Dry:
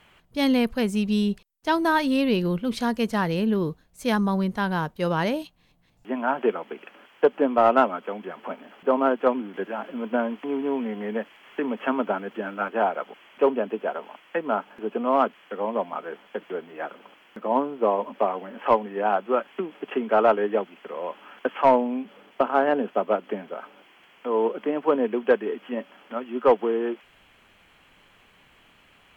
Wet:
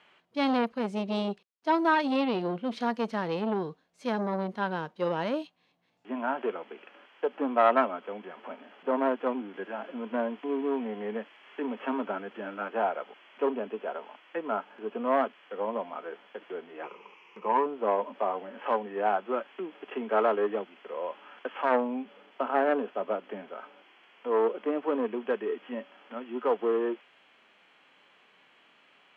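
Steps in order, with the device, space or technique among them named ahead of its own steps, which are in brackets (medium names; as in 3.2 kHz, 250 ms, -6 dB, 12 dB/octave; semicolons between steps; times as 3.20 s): harmonic-percussive split percussive -9 dB; 16.83–17.66 s: rippled EQ curve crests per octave 0.78, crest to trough 14 dB; public-address speaker with an overloaded transformer (transformer saturation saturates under 840 Hz; band-pass 290–5000 Hz)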